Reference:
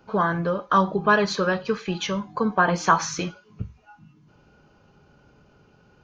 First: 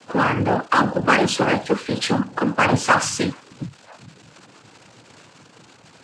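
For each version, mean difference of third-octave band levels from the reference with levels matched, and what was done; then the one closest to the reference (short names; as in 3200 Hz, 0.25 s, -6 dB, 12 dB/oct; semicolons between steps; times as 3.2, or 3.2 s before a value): 8.5 dB: crackle 450/s -35 dBFS; in parallel at -5 dB: wavefolder -20.5 dBFS; on the sum: noise vocoder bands 8; gain +2 dB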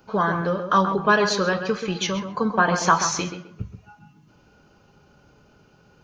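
3.5 dB: high shelf 5400 Hz +10 dB; tape echo 0.132 s, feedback 30%, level -6.5 dB, low-pass 1900 Hz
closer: second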